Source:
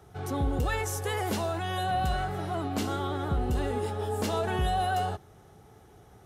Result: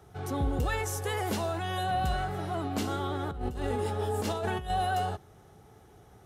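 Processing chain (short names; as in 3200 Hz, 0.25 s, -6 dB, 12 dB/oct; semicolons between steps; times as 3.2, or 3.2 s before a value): 3.31–4.7 negative-ratio compressor -30 dBFS, ratio -0.5; gain -1 dB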